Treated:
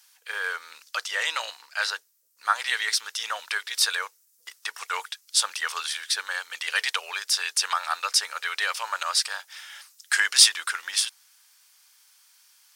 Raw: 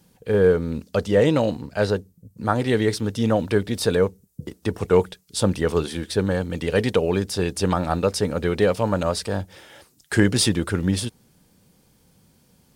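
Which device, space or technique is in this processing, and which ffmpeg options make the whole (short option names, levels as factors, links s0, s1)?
headphones lying on a table: -af "highpass=f=1200:w=0.5412,highpass=f=1200:w=1.3066,equalizer=f=5600:t=o:w=0.58:g=4,volume=1.78"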